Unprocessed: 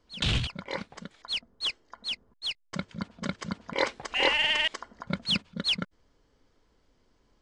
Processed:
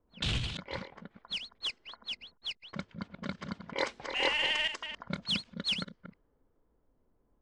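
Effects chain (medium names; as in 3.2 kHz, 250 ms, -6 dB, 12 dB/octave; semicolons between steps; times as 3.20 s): chunks repeated in reverse 198 ms, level -9 dB; treble shelf 5.9 kHz +3 dB; level-controlled noise filter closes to 930 Hz, open at -25.5 dBFS; trim -5.5 dB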